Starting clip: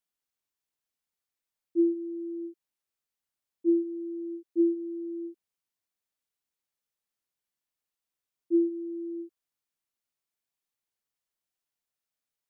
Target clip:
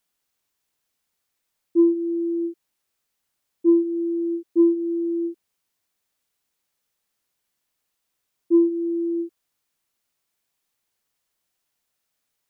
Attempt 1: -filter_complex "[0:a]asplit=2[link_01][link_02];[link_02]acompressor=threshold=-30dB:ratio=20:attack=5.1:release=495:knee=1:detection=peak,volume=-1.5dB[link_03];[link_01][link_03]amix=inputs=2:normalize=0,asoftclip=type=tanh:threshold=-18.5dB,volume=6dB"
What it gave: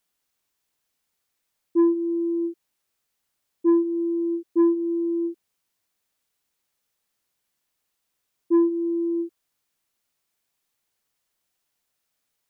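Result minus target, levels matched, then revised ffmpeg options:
soft clipping: distortion +13 dB
-filter_complex "[0:a]asplit=2[link_01][link_02];[link_02]acompressor=threshold=-30dB:ratio=20:attack=5.1:release=495:knee=1:detection=peak,volume=-1.5dB[link_03];[link_01][link_03]amix=inputs=2:normalize=0,asoftclip=type=tanh:threshold=-10.5dB,volume=6dB"

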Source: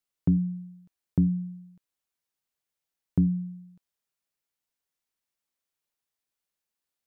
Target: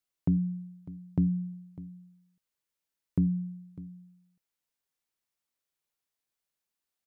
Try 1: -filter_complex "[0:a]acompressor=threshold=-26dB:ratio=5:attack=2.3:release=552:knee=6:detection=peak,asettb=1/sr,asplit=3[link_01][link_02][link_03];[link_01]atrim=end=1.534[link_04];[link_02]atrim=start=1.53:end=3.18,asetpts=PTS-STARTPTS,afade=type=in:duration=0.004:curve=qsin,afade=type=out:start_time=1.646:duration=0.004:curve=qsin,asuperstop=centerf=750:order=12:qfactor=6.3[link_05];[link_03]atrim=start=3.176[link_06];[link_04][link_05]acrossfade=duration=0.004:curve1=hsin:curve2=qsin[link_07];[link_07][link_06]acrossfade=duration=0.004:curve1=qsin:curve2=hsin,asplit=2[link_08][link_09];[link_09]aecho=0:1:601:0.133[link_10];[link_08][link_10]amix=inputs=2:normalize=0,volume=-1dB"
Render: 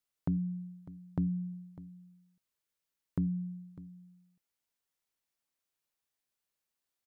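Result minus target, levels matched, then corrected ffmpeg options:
downward compressor: peak gain reduction +6 dB
-filter_complex "[0:a]acompressor=threshold=-17.5dB:ratio=5:attack=2.3:release=552:knee=6:detection=peak,asettb=1/sr,asplit=3[link_01][link_02][link_03];[link_01]atrim=end=1.534[link_04];[link_02]atrim=start=1.53:end=3.18,asetpts=PTS-STARTPTS,afade=type=in:duration=0.004:curve=qsin,afade=type=out:start_time=1.646:duration=0.004:curve=qsin,asuperstop=centerf=750:order=12:qfactor=6.3[link_05];[link_03]atrim=start=3.176[link_06];[link_04][link_05]acrossfade=duration=0.004:curve1=hsin:curve2=qsin[link_07];[link_07][link_06]acrossfade=duration=0.004:curve1=qsin:curve2=hsin,asplit=2[link_08][link_09];[link_09]aecho=0:1:601:0.133[link_10];[link_08][link_10]amix=inputs=2:normalize=0,volume=-1dB"

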